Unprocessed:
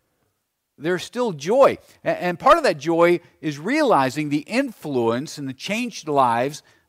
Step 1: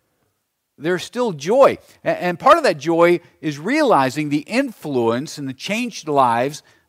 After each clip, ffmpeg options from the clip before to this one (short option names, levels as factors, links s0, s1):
-af "highpass=58,volume=1.33"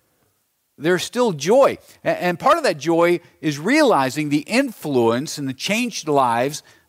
-af "highshelf=f=5300:g=5.5,alimiter=limit=0.422:level=0:latency=1:release=493,volume=1.26"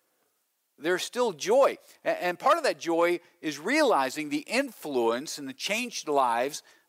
-af "highpass=330,volume=0.447"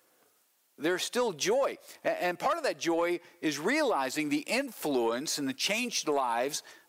-af "acompressor=threshold=0.0282:ratio=5,asoftclip=type=tanh:threshold=0.075,volume=1.88"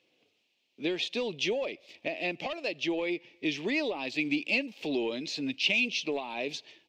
-af "firequalizer=gain_entry='entry(280,0);entry(1400,-19);entry(2500,8);entry(9500,-27)':delay=0.05:min_phase=1"